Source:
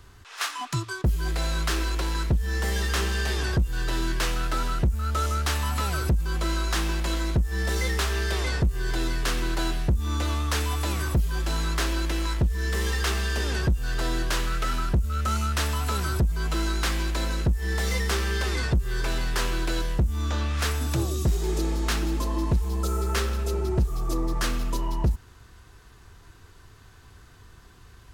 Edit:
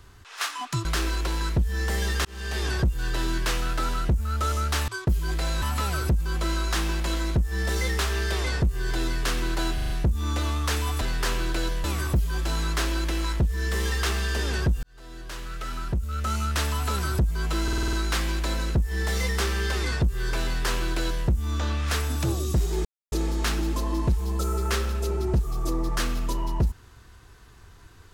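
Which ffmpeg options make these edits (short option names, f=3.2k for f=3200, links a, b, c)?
-filter_complex "[0:a]asplit=19[a][b][c][d][e][f][g][h][i][j][k][l][m][n][o][p][q][r][s];[a]atrim=end=0.852[t];[b]atrim=start=1.588:end=2.99,asetpts=PTS-STARTPTS,afade=t=out:st=1.398:d=0.004:c=hsin[u];[c]atrim=start=2.99:end=5.622,asetpts=PTS-STARTPTS,afade=t=in:d=0.39[v];[d]atrim=start=0.848:end=1.592[w];[e]atrim=start=5.618:end=9.782[x];[f]atrim=start=9.738:end=9.782[y];[g]atrim=start=9.738:end=9.782[z];[h]atrim=start=9.738:end=9.782[aa];[i]atrim=start=9.738:end=10.852[ab];[j]atrim=start=19.138:end=19.972[ac];[k]atrim=start=10.848:end=13.84,asetpts=PTS-STARTPTS,afade=t=out:st=2.988:d=0.004:c=hsin[ad];[l]atrim=start=13.84:end=16.692,asetpts=PTS-STARTPTS,afade=t=in:d=1.75[ae];[m]atrim=start=16.638:end=16.692[af];[n]atrim=start=16.638:end=16.692[ag];[o]atrim=start=16.638:end=16.692[ah];[p]atrim=start=16.638:end=16.692[ai];[q]atrim=start=16.638:end=16.692[aj];[r]atrim=start=16.638:end=21.56,asetpts=PTS-STARTPTS,afade=t=out:st=4.918:d=0.004:c=hsin,apad=pad_dur=0.27[ak];[s]atrim=start=21.56,asetpts=PTS-STARTPTS,afade=t=in:d=0.004:c=hsin[al];[u][v]concat=n=2:v=0:a=1[am];[t][am]acrossfade=d=0.004:c1=hsin:c2=hsin[an];[an][w]acrossfade=d=0.004:c1=hsin:c2=hsin[ao];[ao][x]acrossfade=d=0.004:c1=hsin:c2=hsin[ap];[ap][y]acrossfade=d=0.004:c1=hsin:c2=hsin[aq];[aq][z]acrossfade=d=0.004:c1=hsin:c2=hsin[ar];[ar][aa]acrossfade=d=0.004:c1=hsin:c2=hsin[as];[as][ab]acrossfade=d=0.004:c1=hsin:c2=hsin[at];[at][ac]acrossfade=d=0.004:c1=hsin:c2=hsin[au];[ad][ae]concat=n=2:v=0:a=1[av];[au][av]acrossfade=d=0.004:c1=hsin:c2=hsin[aw];[aw][af]acrossfade=d=0.004:c1=hsin:c2=hsin[ax];[ax][ag]acrossfade=d=0.004:c1=hsin:c2=hsin[ay];[ay][ah]acrossfade=d=0.004:c1=hsin:c2=hsin[az];[az][ai]acrossfade=d=0.004:c1=hsin:c2=hsin[ba];[ba][aj]acrossfade=d=0.004:c1=hsin:c2=hsin[bb];[ak][al]concat=n=2:v=0:a=1[bc];[bb][bc]acrossfade=d=0.004:c1=hsin:c2=hsin"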